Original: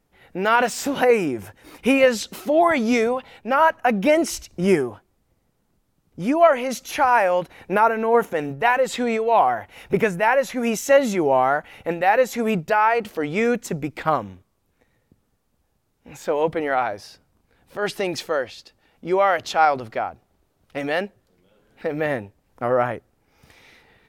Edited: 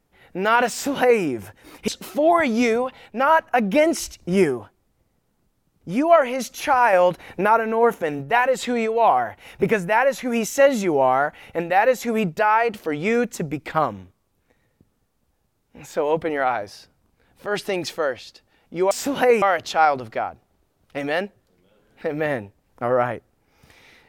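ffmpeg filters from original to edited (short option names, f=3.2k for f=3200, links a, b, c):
-filter_complex "[0:a]asplit=6[a][b][c][d][e][f];[a]atrim=end=1.882[g];[b]atrim=start=2.188:end=7.242[h];[c]atrim=start=7.238:end=7.722,asetpts=PTS-STARTPTS,volume=4dB[i];[d]atrim=start=7.718:end=19.222[j];[e]atrim=start=0.708:end=1.222[k];[f]atrim=start=19.218[l];[g][h]acrossfade=d=0.004:c1=hsin:c2=hsin[m];[m][i]acrossfade=d=0.004:c1=hsin:c2=hsin[n];[n][j]acrossfade=d=0.004:c1=hsin:c2=hsin[o];[o][k]acrossfade=d=0.004:c1=hsin:c2=hsin[p];[p][l]acrossfade=d=0.004:c1=hsin:c2=hsin"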